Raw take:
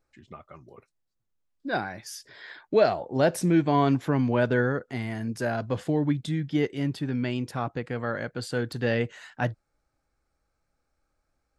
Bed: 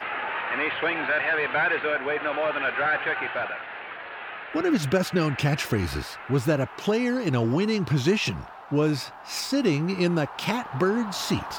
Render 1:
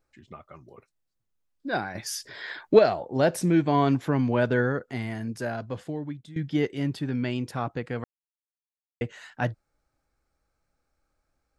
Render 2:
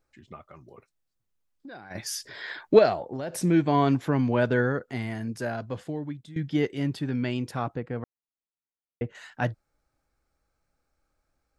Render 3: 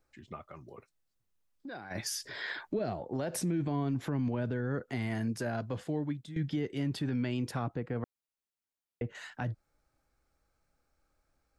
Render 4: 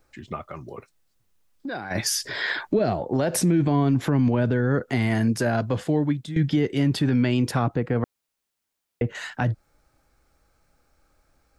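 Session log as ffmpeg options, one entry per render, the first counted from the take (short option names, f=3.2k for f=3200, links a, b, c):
-filter_complex "[0:a]asettb=1/sr,asplit=3[a][b][c];[a]atrim=end=1.954[d];[b]atrim=start=1.95:end=2.79,asetpts=PTS-STARTPTS,afade=t=in:d=0.004:c=qsin,afade=t=out:st=0.836:d=0.004:c=qsin,acontrast=76[e];[c]atrim=start=2.786[f];[d][e]acrossfade=d=0.004:c1=hsin:c2=qsin[g];[g][f]acrossfade=d=0.004:c1=qsin:c2=hsin,asplit=4[h][i][j][k];[h]atrim=end=6.36,asetpts=PTS-STARTPTS,afade=t=out:st=5.04:d=1.32:silence=0.141254[l];[i]atrim=start=6.36:end=8.04,asetpts=PTS-STARTPTS,afade=t=in:d=0.004:c=hsin:silence=0.141254,afade=t=out:st=1.676:d=0.004:c=hsin[m];[j]atrim=start=8.04:end=9.01,asetpts=PTS-STARTPTS,volume=0[n];[k]atrim=start=9.01,asetpts=PTS-STARTPTS,afade=t=in:d=0.004:c=hsin[o];[l][m][n][o]concat=n=4:v=0:a=1"
-filter_complex "[0:a]asplit=3[a][b][c];[a]afade=t=out:st=0.45:d=0.02[d];[b]acompressor=threshold=-41dB:ratio=6:attack=3.2:release=140:knee=1:detection=peak,afade=t=in:st=0.45:d=0.02,afade=t=out:st=1.9:d=0.02[e];[c]afade=t=in:st=1.9:d=0.02[f];[d][e][f]amix=inputs=3:normalize=0,asettb=1/sr,asplit=3[g][h][i];[g]atrim=end=2.984[j];[h]atrim=start=2.98:end=3.39,asetpts=PTS-STARTPTS,afade=t=in:d=0.004:c=qsin,afade=t=out:st=0.406:d=0.004:c=qsin,acompressor=threshold=-28dB:ratio=16:attack=3.2:release=140:knee=1:detection=peak[k];[i]atrim=start=3.386[l];[j][k]acrossfade=d=0.004:c1=hsin:c2=qsin[m];[m][l]acrossfade=d=0.004:c1=qsin:c2=hsin,asettb=1/sr,asplit=3[n][o][p];[n]atrim=end=7.764[q];[o]atrim=start=7.76:end=9.15,asetpts=PTS-STARTPTS,afade=t=in:d=0.004:c=qsin,afade=t=out:st=1.386:d=0.004:c=qsin,lowpass=f=1k:p=1[r];[p]atrim=start=9.146[s];[q][r]acrossfade=d=0.004:c1=hsin:c2=qsin[t];[t][s]acrossfade=d=0.004:c1=qsin:c2=hsin"
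-filter_complex "[0:a]acrossover=split=330[a][b];[b]acompressor=threshold=-33dB:ratio=4[c];[a][c]amix=inputs=2:normalize=0,alimiter=level_in=0.5dB:limit=-24dB:level=0:latency=1:release=39,volume=-0.5dB"
-af "volume=11.5dB"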